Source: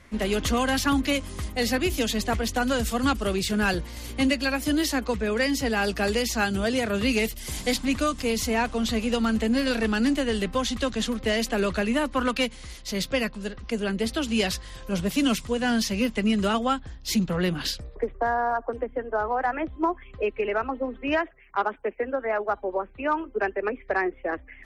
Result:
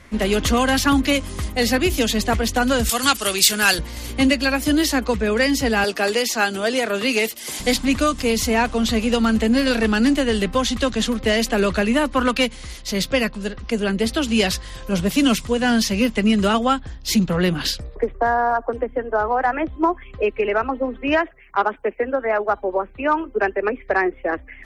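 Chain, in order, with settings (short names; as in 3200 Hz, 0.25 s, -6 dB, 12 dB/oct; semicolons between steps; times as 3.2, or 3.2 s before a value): 2.89–3.79 tilt +4 dB/oct; 5.84–7.6 HPF 310 Hz 12 dB/oct; gain +6 dB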